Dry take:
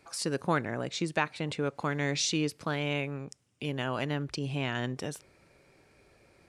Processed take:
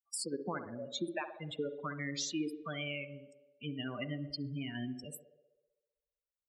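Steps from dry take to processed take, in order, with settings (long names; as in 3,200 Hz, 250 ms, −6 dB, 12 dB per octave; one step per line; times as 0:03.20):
spectral dynamics exaggerated over time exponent 3
in parallel at +2.5 dB: speech leveller
on the sum: parametric band 6,600 Hz +3 dB 0.9 octaves
downward compressor 5 to 1, threshold −35 dBFS, peak gain reduction 14 dB
high-pass filter 170 Hz 6 dB per octave
feedback echo with a band-pass in the loop 64 ms, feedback 73%, band-pass 490 Hz, level −7 dB
gate on every frequency bin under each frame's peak −25 dB strong
on a send at −17 dB: convolution reverb RT60 0.85 s, pre-delay 33 ms
on the sum: dynamic equaliser 310 Hz, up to +5 dB, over −52 dBFS, Q 2.1
level −1.5 dB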